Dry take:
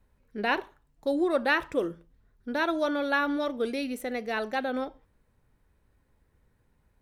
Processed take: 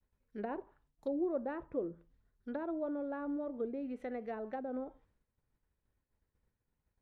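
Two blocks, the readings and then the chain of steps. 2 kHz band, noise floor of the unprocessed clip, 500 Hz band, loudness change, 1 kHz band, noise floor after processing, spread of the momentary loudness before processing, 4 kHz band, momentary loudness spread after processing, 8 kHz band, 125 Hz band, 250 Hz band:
−23.5 dB, −69 dBFS, −9.0 dB, −10.5 dB, −14.5 dB, below −85 dBFS, 9 LU, below −30 dB, 9 LU, below −25 dB, −7.5 dB, −7.5 dB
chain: downward expander −59 dBFS
treble cut that deepens with the level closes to 610 Hz, closed at −26 dBFS
level −7.5 dB

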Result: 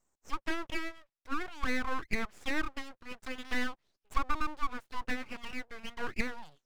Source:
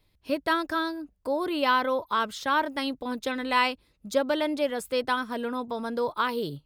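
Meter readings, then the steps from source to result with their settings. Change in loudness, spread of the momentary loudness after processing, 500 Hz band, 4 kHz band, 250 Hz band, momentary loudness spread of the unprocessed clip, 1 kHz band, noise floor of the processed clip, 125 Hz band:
−10.0 dB, 9 LU, −17.0 dB, −11.0 dB, −9.5 dB, 8 LU, −11.5 dB, below −85 dBFS, can't be measured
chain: envelope filter 680–3,600 Hz, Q 3.1, down, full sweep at −22.5 dBFS
full-wave rectification
level +2.5 dB

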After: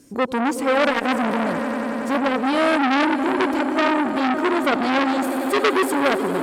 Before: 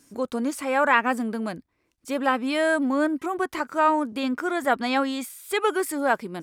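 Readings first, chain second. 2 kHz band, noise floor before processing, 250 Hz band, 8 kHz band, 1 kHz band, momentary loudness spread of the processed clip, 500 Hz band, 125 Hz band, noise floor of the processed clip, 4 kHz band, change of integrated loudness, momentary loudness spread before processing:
+3.5 dB, −72 dBFS, +6.0 dB, +1.5 dB, +3.5 dB, 4 LU, +4.5 dB, can't be measured, −27 dBFS, +6.5 dB, +4.5 dB, 8 LU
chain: parametric band 11,000 Hz −2.5 dB 0.27 octaves
asymmetric clip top −12 dBFS
low shelf with overshoot 680 Hz +6.5 dB, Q 1.5
echo that builds up and dies away 93 ms, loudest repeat 5, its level −14.5 dB
saturating transformer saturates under 2,400 Hz
level +3 dB

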